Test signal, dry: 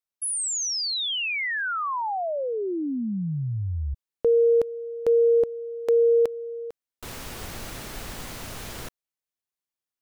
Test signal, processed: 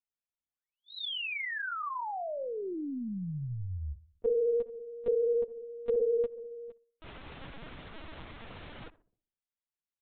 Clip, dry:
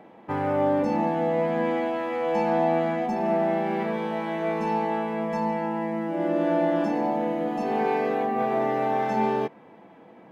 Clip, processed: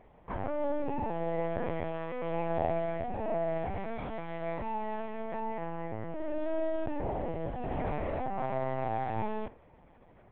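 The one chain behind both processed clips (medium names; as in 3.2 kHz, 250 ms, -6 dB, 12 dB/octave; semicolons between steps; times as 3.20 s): on a send: filtered feedback delay 65 ms, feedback 46%, low-pass 1.1 kHz, level -15.5 dB; on the sum: LPC vocoder at 8 kHz pitch kept; trim -8.5 dB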